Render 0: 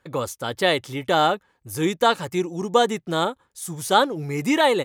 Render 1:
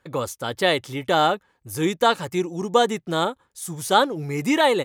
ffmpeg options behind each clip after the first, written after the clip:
-af anull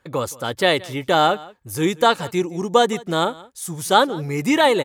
-af "aecho=1:1:172:0.0841,volume=2.5dB"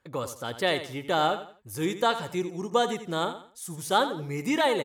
-af "aecho=1:1:85:0.266,volume=-8.5dB"

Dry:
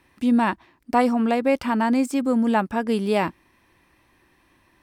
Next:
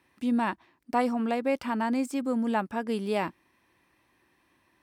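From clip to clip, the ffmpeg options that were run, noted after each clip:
-af "highpass=f=120:p=1,volume=-6.5dB"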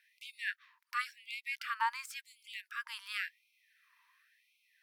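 -af "equalizer=f=8.2k:w=1.7:g=-7,afftfilt=real='re*gte(b*sr/1024,880*pow(2100/880,0.5+0.5*sin(2*PI*0.93*pts/sr)))':imag='im*gte(b*sr/1024,880*pow(2100/880,0.5+0.5*sin(2*PI*0.93*pts/sr)))':win_size=1024:overlap=0.75,volume=1dB"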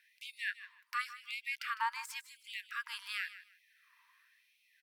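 -filter_complex "[0:a]asplit=2[a][b];[b]alimiter=level_in=5.5dB:limit=-24dB:level=0:latency=1:release=369,volume=-5.5dB,volume=1dB[c];[a][c]amix=inputs=2:normalize=0,aecho=1:1:154|308:0.188|0.0414,volume=-5dB"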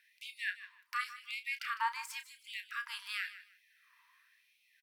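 -filter_complex "[0:a]asplit=2[a][b];[b]adelay=32,volume=-10.5dB[c];[a][c]amix=inputs=2:normalize=0"

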